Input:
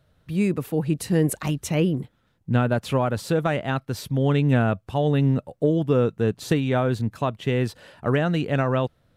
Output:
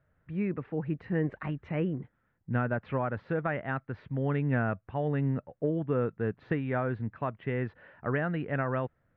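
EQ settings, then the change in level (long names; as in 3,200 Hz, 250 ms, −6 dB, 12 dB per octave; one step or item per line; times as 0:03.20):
transistor ladder low-pass 2,200 Hz, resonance 45%
high-frequency loss of the air 100 metres
0.0 dB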